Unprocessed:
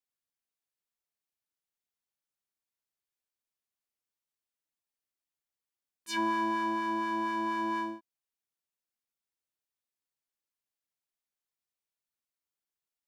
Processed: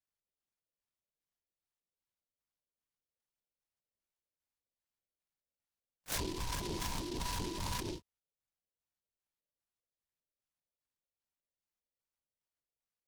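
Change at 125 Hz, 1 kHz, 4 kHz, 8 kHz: no reading, -13.5 dB, +1.5 dB, +8.5 dB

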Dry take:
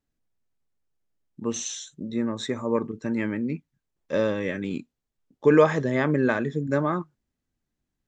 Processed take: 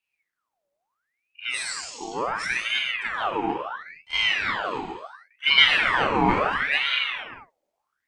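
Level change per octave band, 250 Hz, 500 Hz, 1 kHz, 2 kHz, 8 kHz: -7.5 dB, -8.0 dB, +7.0 dB, +10.5 dB, -1.5 dB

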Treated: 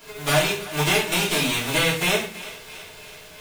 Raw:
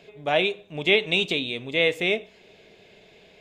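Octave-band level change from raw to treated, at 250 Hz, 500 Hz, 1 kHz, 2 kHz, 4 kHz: +3.5 dB, -1.0 dB, +6.0 dB, +1.5 dB, +2.5 dB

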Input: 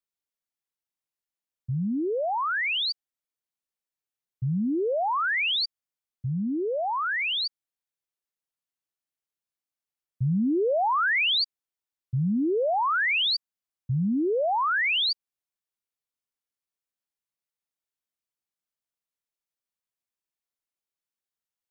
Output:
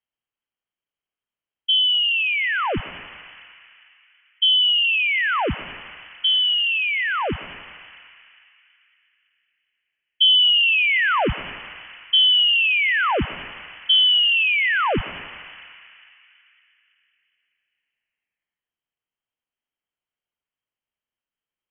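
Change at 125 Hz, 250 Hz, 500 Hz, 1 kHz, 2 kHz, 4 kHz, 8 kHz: -5.5 dB, -6.5 dB, -3.0 dB, +1.0 dB, +8.0 dB, +13.0 dB, no reading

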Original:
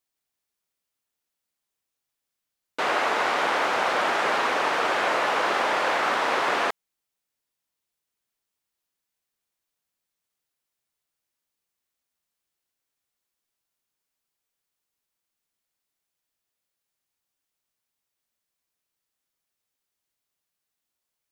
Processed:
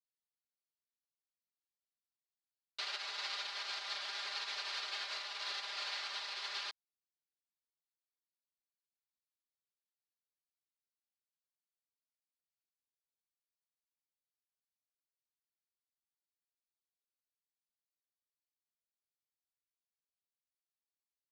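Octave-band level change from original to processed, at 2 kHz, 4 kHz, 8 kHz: -18.5 dB, -6.5 dB, -11.5 dB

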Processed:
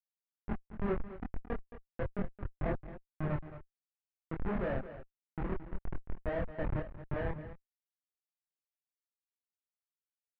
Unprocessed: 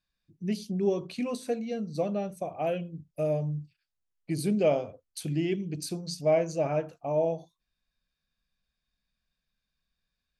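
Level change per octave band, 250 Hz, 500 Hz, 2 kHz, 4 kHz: -9.0 dB, -12.0 dB, -2.0 dB, -20.0 dB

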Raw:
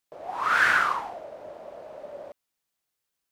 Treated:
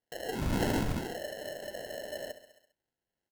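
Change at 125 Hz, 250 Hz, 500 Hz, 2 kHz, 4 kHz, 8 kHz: +17.5 dB, +14.0 dB, +2.0 dB, -17.5 dB, -3.5 dB, +1.0 dB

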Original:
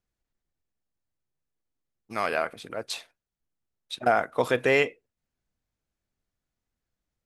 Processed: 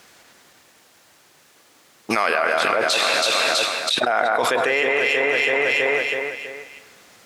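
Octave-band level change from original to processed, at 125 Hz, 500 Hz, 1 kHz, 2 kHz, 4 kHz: -2.5 dB, +7.0 dB, +8.5 dB, +12.5 dB, +17.0 dB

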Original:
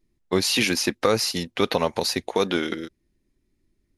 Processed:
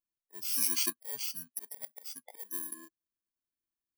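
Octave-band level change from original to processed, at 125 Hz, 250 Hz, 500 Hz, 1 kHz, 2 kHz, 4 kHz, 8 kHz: -30.5 dB, -24.0 dB, -32.0 dB, -25.0 dB, -20.0 dB, -15.5 dB, -4.5 dB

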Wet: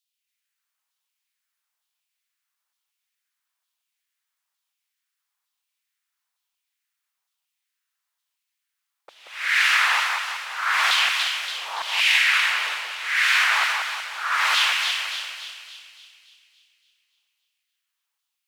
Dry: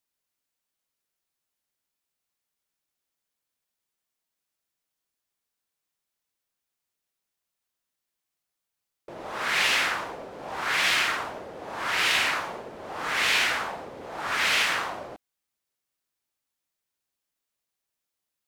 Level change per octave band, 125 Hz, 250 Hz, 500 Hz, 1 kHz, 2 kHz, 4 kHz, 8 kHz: under -25 dB, under -20 dB, -9.0 dB, +4.0 dB, +6.0 dB, +5.5 dB, +3.0 dB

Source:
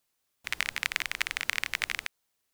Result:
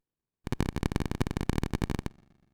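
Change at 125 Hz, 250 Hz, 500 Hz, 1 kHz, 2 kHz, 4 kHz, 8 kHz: +26.0 dB, +25.0 dB, +14.5 dB, +1.5 dB, -13.5 dB, -11.0 dB, -8.5 dB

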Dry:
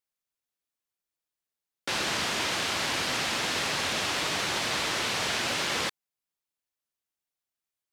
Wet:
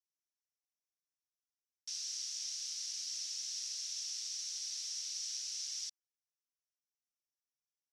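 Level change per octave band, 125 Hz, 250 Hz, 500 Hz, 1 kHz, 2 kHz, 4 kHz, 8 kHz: under -40 dB, under -40 dB, under -40 dB, under -40 dB, -31.0 dB, -11.0 dB, -4.0 dB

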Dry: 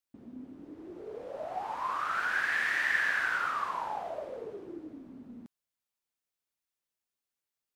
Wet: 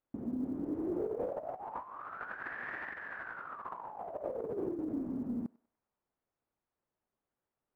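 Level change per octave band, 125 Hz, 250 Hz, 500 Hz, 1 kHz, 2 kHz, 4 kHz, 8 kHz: +7.0 dB, +9.0 dB, +2.5 dB, -9.0 dB, -14.0 dB, under -20 dB, under -25 dB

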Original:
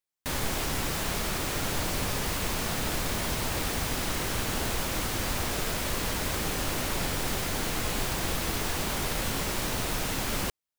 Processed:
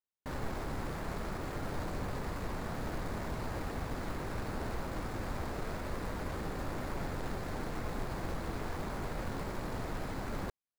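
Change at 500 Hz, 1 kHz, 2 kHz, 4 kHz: -6.0 dB, -7.0 dB, -11.0 dB, -18.5 dB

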